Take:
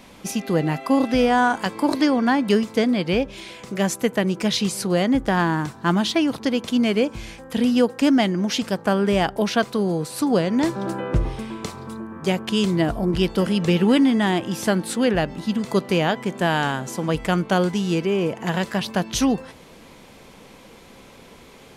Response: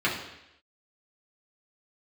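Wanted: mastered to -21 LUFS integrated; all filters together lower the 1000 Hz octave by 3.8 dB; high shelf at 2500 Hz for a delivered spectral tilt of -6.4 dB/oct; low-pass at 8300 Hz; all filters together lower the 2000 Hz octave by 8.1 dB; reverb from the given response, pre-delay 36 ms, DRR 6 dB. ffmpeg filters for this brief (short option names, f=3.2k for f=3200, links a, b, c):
-filter_complex "[0:a]lowpass=8.3k,equalizer=f=1k:t=o:g=-3,equalizer=f=2k:t=o:g=-7.5,highshelf=f=2.5k:g=-5,asplit=2[a][b];[1:a]atrim=start_sample=2205,adelay=36[c];[b][c]afir=irnorm=-1:irlink=0,volume=-19.5dB[d];[a][d]amix=inputs=2:normalize=0,volume=0.5dB"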